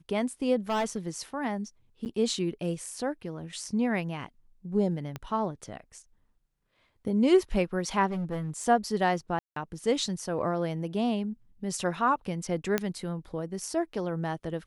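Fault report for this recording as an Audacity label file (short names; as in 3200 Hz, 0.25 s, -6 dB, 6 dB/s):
0.690000	1.180000	clipped -24.5 dBFS
2.050000	2.060000	gap 9.2 ms
5.160000	5.160000	pop -21 dBFS
8.100000	8.640000	clipped -28.5 dBFS
9.390000	9.560000	gap 0.173 s
12.780000	12.780000	pop -11 dBFS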